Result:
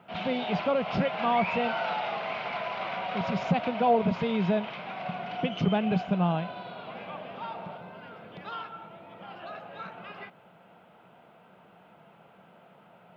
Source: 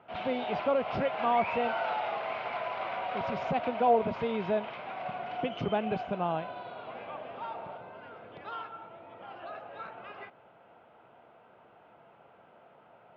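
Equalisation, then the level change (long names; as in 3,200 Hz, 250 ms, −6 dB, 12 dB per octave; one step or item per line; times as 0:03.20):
parametric band 180 Hz +13.5 dB 0.56 octaves
high-shelf EQ 3,200 Hz +12 dB
0.0 dB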